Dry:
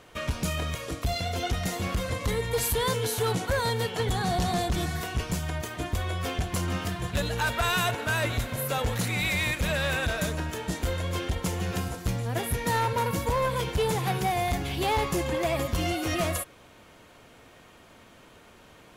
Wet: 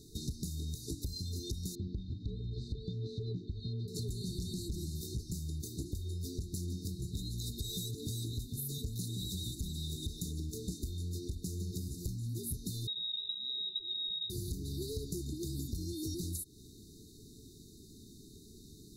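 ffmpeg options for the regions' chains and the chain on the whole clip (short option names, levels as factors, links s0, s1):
-filter_complex "[0:a]asettb=1/sr,asplit=3[s0][s1][s2];[s0]atrim=end=1.754[s3];[s1]atrim=start=1.75:end=3.88,asetpts=PTS-STARTPTS,afade=t=in:d=0.004:c=qsin,afade=t=out:st=2.126:d=0.004:c=qsin,lowpass=f=3100:w=0.5412,lowpass=f=3100:w=1.3066,equalizer=f=590:t=o:w=0.5:g=-9[s4];[s2]atrim=start=3.876[s5];[s3][s4]acrossfade=d=0.004:c1=hsin:c2=qsin[s6];[s6][s5]acrossfade=d=0.004:c1=qsin:c2=hsin,asettb=1/sr,asplit=3[s7][s8][s9];[s7]atrim=end=12.874[s10];[s8]atrim=start=12.87:end=14.3,asetpts=PTS-STARTPTS,afade=t=in:d=0.004:c=qsin,afade=t=out:st=1.426:d=0.004:c=qsin,volume=15,asoftclip=hard,volume=0.0668,lowpass=f=3300:t=q:w=0.5098,lowpass=f=3300:t=q:w=0.6013,lowpass=f=3300:t=q:w=0.9,lowpass=f=3300:t=q:w=2.563,afreqshift=-3900[s11];[s9]atrim=start=14.296[s12];[s10][s11]acrossfade=d=0.004:c1=hsin:c2=qsin[s13];[s13][s12]acrossfade=d=0.004:c1=qsin:c2=hsin,afftfilt=real='re*(1-between(b*sr/4096,450,3600))':imag='im*(1-between(b*sr/4096,450,3600))':win_size=4096:overlap=0.75,equalizer=f=750:t=o:w=1.4:g=-10,acompressor=threshold=0.0112:ratio=10,volume=1.5"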